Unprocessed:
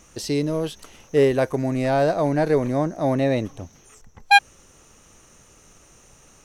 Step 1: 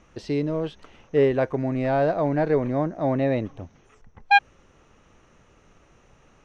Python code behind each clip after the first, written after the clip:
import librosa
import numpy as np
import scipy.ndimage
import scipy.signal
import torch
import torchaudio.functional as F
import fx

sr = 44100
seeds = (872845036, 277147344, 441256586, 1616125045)

y = scipy.signal.sosfilt(scipy.signal.butter(2, 2800.0, 'lowpass', fs=sr, output='sos'), x)
y = F.gain(torch.from_numpy(y), -2.0).numpy()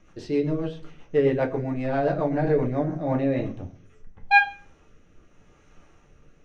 y = fx.room_shoebox(x, sr, seeds[0], volume_m3=31.0, walls='mixed', distance_m=0.45)
y = fx.rotary_switch(y, sr, hz=7.5, then_hz=0.85, switch_at_s=2.64)
y = F.gain(torch.from_numpy(y), -2.0).numpy()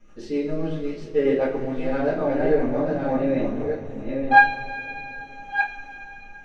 y = fx.reverse_delay(x, sr, ms=623, wet_db=-5)
y = fx.rev_double_slope(y, sr, seeds[1], early_s=0.27, late_s=4.4, knee_db=-22, drr_db=-8.0)
y = F.gain(torch.from_numpy(y), -8.0).numpy()